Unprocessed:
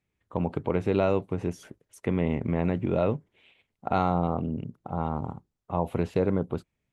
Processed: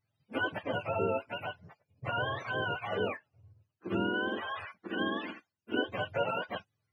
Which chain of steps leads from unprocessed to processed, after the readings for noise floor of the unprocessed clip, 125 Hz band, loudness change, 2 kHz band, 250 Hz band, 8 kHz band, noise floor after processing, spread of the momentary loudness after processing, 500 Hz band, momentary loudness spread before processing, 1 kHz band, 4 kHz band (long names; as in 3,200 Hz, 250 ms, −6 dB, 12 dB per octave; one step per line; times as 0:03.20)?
−82 dBFS, −13.0 dB, −6.0 dB, +9.0 dB, −9.0 dB, can't be measured, −85 dBFS, 11 LU, −6.5 dB, 11 LU, −4.5 dB, +9.5 dB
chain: frequency axis turned over on the octave scale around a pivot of 510 Hz
speech leveller within 3 dB 0.5 s
level −3.5 dB